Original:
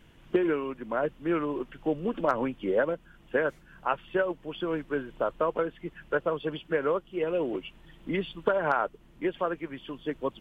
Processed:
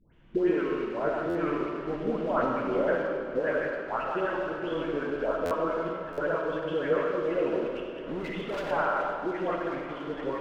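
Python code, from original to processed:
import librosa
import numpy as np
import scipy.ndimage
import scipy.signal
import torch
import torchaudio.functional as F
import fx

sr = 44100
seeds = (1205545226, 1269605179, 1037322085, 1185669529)

p1 = fx.reverse_delay(x, sr, ms=105, wet_db=-2.0)
p2 = fx.dispersion(p1, sr, late='highs', ms=140.0, hz=1200.0)
p3 = fx.quant_dither(p2, sr, seeds[0], bits=6, dither='none')
p4 = p2 + (p3 * librosa.db_to_amplitude(-8.0))
p5 = scipy.signal.sosfilt(scipy.signal.butter(2, 3400.0, 'lowpass', fs=sr, output='sos'), p4)
p6 = fx.clip_hard(p5, sr, threshold_db=-25.5, at=(7.65, 8.71))
p7 = p6 + fx.echo_swing(p6, sr, ms=712, ratio=1.5, feedback_pct=68, wet_db=-16.0, dry=0)
p8 = fx.rev_freeverb(p7, sr, rt60_s=1.7, hf_ratio=0.8, predelay_ms=15, drr_db=2.0)
p9 = fx.buffer_glitch(p8, sr, at_s=(1.29, 5.45, 6.12), block=512, repeats=4)
y = p9 * librosa.db_to_amplitude(-6.5)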